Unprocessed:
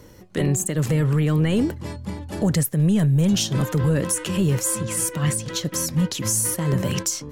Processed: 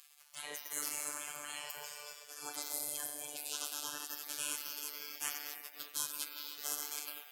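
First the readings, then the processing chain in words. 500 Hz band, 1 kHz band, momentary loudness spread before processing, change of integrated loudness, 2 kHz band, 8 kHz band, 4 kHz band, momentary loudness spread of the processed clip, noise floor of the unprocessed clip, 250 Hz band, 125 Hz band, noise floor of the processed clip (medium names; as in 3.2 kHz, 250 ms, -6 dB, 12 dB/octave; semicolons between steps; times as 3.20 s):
-26.5 dB, -13.5 dB, 7 LU, -18.0 dB, -12.0 dB, -14.0 dB, -11.5 dB, 7 LU, -44 dBFS, -37.0 dB, under -40 dB, -58 dBFS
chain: on a send: echo whose repeats swap between lows and highs 205 ms, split 1.3 kHz, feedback 50%, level -7 dB; on the sum: spectral noise reduction 22 dB; reverse; compression 6:1, threshold -28 dBFS, peak gain reduction 13 dB; reverse; peak limiter -28.5 dBFS, peak gain reduction 11 dB; high-pass 110 Hz 12 dB/octave; peaking EQ 11 kHz +7 dB 1.6 oct; Schroeder reverb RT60 1.9 s, combs from 28 ms, DRR 3 dB; spectral gate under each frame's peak -25 dB weak; robot voice 147 Hz; upward compressor, threshold -54 dBFS; bass shelf 150 Hz -11.5 dB; trim +8 dB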